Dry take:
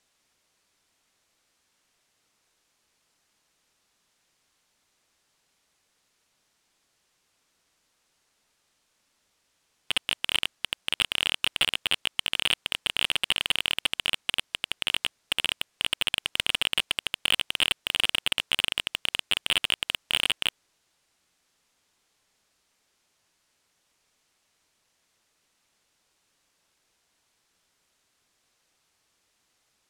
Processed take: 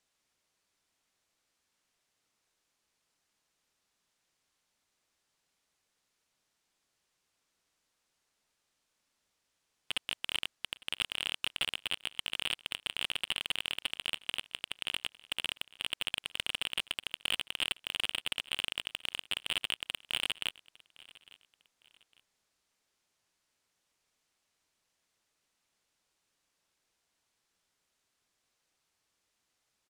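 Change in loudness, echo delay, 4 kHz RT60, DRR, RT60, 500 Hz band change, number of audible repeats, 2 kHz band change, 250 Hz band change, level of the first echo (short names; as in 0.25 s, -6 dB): -8.5 dB, 0.855 s, none, none, none, -8.5 dB, 2, -8.5 dB, -8.5 dB, -22.0 dB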